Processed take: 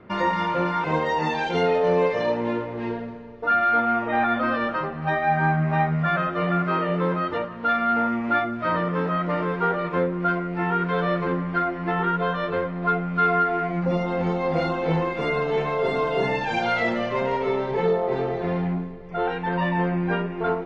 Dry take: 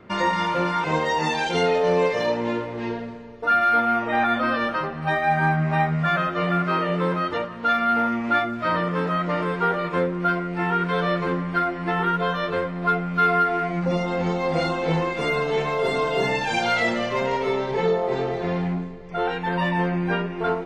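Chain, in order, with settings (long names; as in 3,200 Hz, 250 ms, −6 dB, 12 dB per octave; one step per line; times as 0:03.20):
low-pass filter 7,100 Hz 12 dB per octave
high-shelf EQ 4,000 Hz −12 dB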